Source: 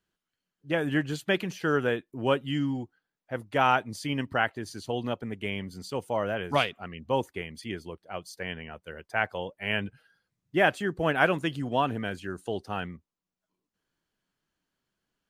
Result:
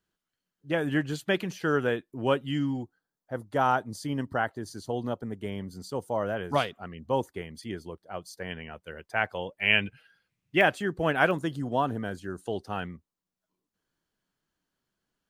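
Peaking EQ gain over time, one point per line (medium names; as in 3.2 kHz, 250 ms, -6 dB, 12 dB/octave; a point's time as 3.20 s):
peaking EQ 2.5 kHz 0.75 oct
-2.5 dB
from 2.82 s -14.5 dB
from 6.21 s -8 dB
from 8.51 s 0 dB
from 9.60 s +10.5 dB
from 10.61 s -1.5 dB
from 11.31 s -12.5 dB
from 12.40 s -3 dB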